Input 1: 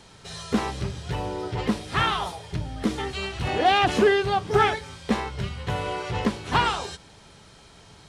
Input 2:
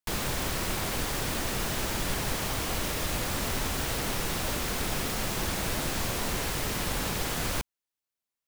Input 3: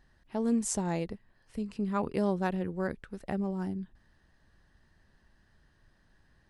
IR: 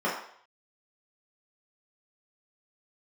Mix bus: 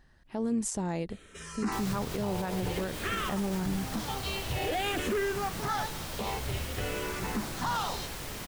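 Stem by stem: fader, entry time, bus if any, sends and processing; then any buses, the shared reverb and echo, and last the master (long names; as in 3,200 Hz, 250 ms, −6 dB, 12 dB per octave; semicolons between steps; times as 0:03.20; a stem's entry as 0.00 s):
−1.0 dB, 1.10 s, no send, soft clipping −21.5 dBFS, distortion −9 dB; frequency shifter mixed with the dry sound −0.53 Hz
−8.5 dB, 1.65 s, no send, no processing
+2.5 dB, 0.00 s, no send, speech leveller within 4 dB 2 s; amplitude modulation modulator 110 Hz, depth 10%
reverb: not used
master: brickwall limiter −22.5 dBFS, peak gain reduction 9 dB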